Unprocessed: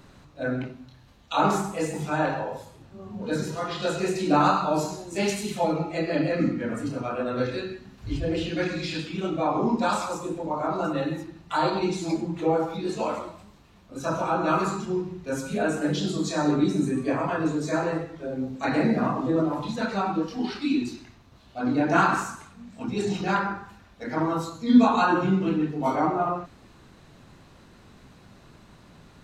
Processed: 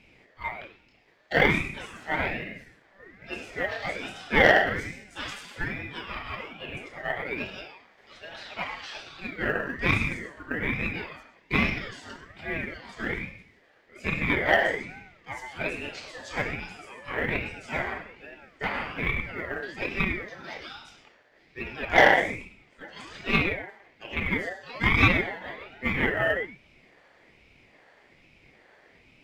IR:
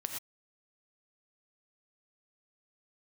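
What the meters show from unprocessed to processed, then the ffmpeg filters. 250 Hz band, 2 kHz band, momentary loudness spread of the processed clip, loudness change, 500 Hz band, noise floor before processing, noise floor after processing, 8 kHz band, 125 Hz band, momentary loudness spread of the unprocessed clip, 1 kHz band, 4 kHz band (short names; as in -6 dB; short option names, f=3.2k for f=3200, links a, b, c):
-10.0 dB, +8.0 dB, 19 LU, -1.0 dB, -4.0 dB, -53 dBFS, -60 dBFS, -10.5 dB, -3.5 dB, 12 LU, -5.5 dB, +1.5 dB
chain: -filter_complex "[0:a]highpass=f=1.2k:t=q:w=2.9,highshelf=f=2.3k:g=-9,acrusher=bits=9:mode=log:mix=0:aa=0.000001,aeval=exprs='0.531*(cos(1*acos(clip(val(0)/0.531,-1,1)))-cos(1*PI/2))+0.0944*(cos(4*acos(clip(val(0)/0.531,-1,1)))-cos(4*PI/2))':c=same,asplit=2[a][b];[1:a]atrim=start_sample=2205,lowpass=6.4k[c];[b][c]afir=irnorm=-1:irlink=0,volume=-4.5dB[d];[a][d]amix=inputs=2:normalize=0,aeval=exprs='val(0)*sin(2*PI*870*n/s+870*0.35/1.2*sin(2*PI*1.2*n/s))':c=same,volume=-2dB"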